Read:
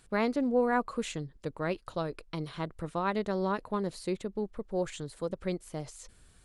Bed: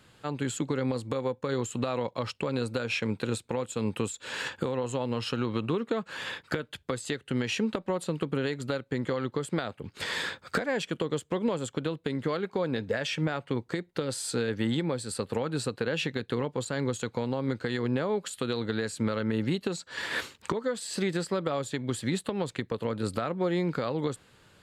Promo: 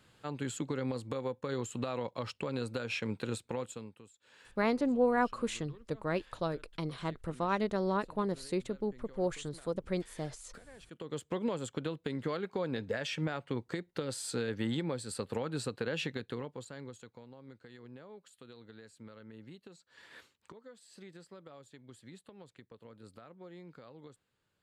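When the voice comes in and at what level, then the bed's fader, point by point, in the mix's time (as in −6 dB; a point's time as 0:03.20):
4.45 s, −1.0 dB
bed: 0:03.69 −6 dB
0:03.96 −25.5 dB
0:10.76 −25.5 dB
0:11.21 −5.5 dB
0:16.09 −5.5 dB
0:17.27 −22.5 dB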